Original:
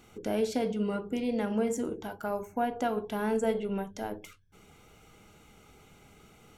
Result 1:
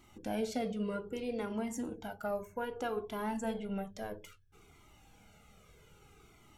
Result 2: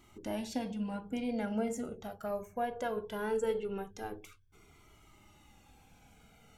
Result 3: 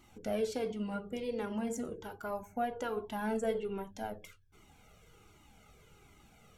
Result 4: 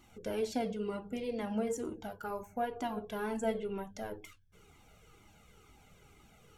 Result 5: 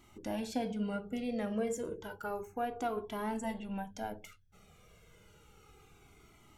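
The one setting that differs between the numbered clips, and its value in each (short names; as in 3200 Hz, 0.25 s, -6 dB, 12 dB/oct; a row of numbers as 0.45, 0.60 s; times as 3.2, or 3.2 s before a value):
cascading flanger, rate: 0.62, 0.2, 1.3, 2.1, 0.31 Hz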